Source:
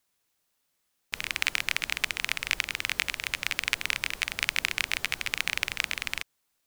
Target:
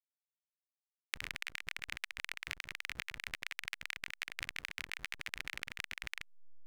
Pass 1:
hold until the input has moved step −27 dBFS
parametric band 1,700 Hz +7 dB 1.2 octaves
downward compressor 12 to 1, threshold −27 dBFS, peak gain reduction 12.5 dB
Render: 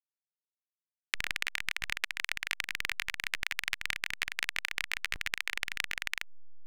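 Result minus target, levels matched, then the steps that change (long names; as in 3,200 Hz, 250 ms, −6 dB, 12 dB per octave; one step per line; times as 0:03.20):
downward compressor: peak gain reduction −8 dB; hold until the input has moved: distortion +6 dB
change: hold until the input has moved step −33.5 dBFS
change: downward compressor 12 to 1, threshold −36 dBFS, peak gain reduction 21 dB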